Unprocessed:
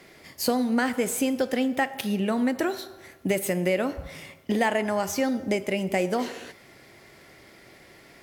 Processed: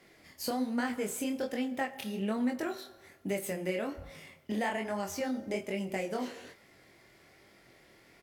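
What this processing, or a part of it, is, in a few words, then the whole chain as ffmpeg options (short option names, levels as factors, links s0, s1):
double-tracked vocal: -filter_complex "[0:a]asplit=2[s0][s1];[s1]adelay=24,volume=0.251[s2];[s0][s2]amix=inputs=2:normalize=0,flanger=delay=20:depth=7.6:speed=1.2,volume=0.501"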